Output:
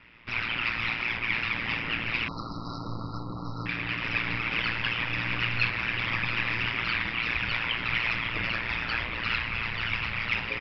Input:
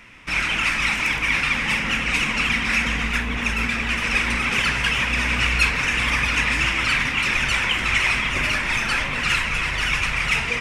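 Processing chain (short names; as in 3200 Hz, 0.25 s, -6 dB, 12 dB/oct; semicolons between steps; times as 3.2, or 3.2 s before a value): downsampling 11025 Hz; ring modulator 58 Hz; 2.28–3.66 brick-wall FIR band-stop 1400–3800 Hz; gain -5 dB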